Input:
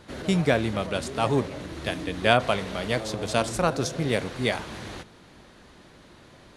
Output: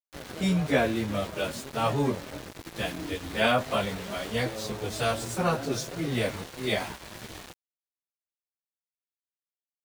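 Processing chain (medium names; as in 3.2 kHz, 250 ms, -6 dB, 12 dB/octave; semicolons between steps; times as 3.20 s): plain phase-vocoder stretch 1.5×; small samples zeroed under -37.5 dBFS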